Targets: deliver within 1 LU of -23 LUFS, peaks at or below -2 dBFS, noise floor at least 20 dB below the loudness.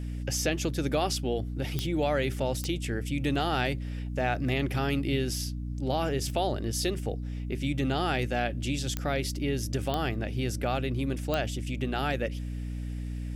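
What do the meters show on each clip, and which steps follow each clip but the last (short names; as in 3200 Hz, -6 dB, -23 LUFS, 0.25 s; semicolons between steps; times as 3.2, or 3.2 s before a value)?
clicks 5; hum 60 Hz; harmonics up to 300 Hz; hum level -32 dBFS; loudness -30.5 LUFS; peak -14.0 dBFS; loudness target -23.0 LUFS
-> de-click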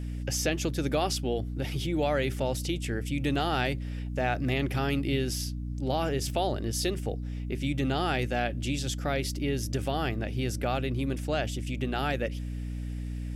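clicks 0; hum 60 Hz; harmonics up to 300 Hz; hum level -32 dBFS
-> de-hum 60 Hz, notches 5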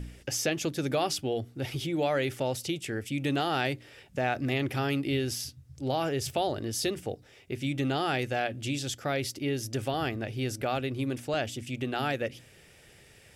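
hum none; loudness -31.0 LUFS; peak -14.0 dBFS; loudness target -23.0 LUFS
-> gain +8 dB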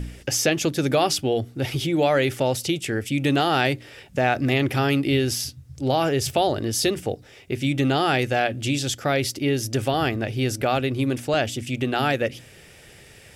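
loudness -23.0 LUFS; peak -6.0 dBFS; noise floor -48 dBFS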